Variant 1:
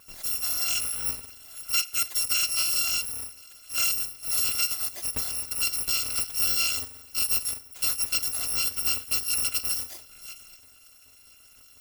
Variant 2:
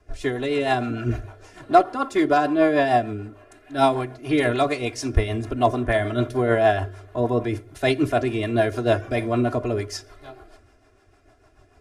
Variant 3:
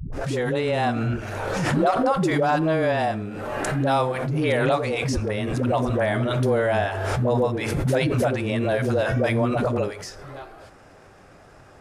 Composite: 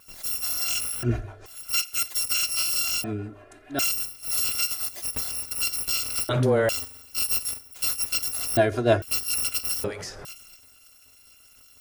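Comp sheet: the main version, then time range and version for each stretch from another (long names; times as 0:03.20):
1
0:01.03–0:01.46: punch in from 2
0:03.04–0:03.79: punch in from 2
0:06.29–0:06.69: punch in from 3
0:08.57–0:09.02: punch in from 2
0:09.84–0:10.25: punch in from 3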